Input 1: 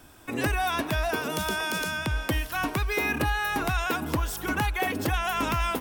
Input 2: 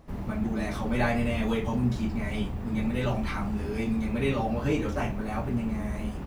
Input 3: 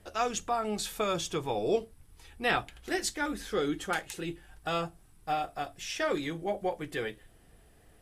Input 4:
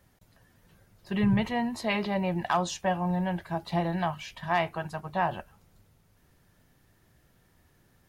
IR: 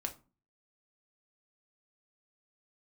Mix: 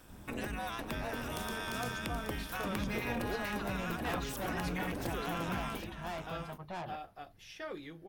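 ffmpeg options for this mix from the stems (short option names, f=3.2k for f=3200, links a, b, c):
-filter_complex "[0:a]acompressor=threshold=-30dB:ratio=6,tremolo=f=220:d=0.889,volume=-2.5dB,asplit=2[a][b];[b]volume=-9.5dB[c];[1:a]volume=-18dB[d];[2:a]equalizer=f=7.6k:w=2.5:g=-13.5,adelay=1600,volume=-12.5dB[e];[3:a]equalizer=f=8.3k:t=o:w=0.88:g=-12.5,asoftclip=type=tanh:threshold=-31dB,adelay=1550,volume=-6.5dB[f];[c]aecho=0:1:776:1[g];[a][d][e][f][g]amix=inputs=5:normalize=0"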